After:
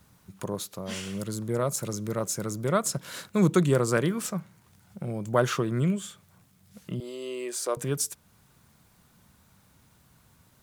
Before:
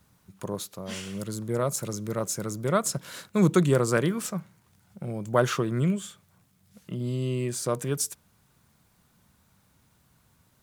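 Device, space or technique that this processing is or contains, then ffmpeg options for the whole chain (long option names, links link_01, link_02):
parallel compression: -filter_complex "[0:a]asplit=2[link_01][link_02];[link_02]acompressor=threshold=-40dB:ratio=6,volume=-2dB[link_03];[link_01][link_03]amix=inputs=2:normalize=0,asettb=1/sr,asplit=3[link_04][link_05][link_06];[link_04]atrim=end=7.004[link_07];[link_05]atrim=start=7:end=7.77,asetpts=PTS-STARTPTS,afade=type=in:duration=0.004:curve=qsin,afade=type=out:start_time=0.766:duration=0.004:curve=qsin,highpass=frequency=350:width=0.5412,highpass=frequency=350:width=1.3066[link_08];[link_06]atrim=start=7.766[link_09];[link_07][link_08]acrossfade=duration=0.004:curve1=hsin:curve2=qsin[link_10];[link_10][link_09]acrossfade=duration=0.004:curve1=qsin:curve2=hsin,volume=-1.5dB"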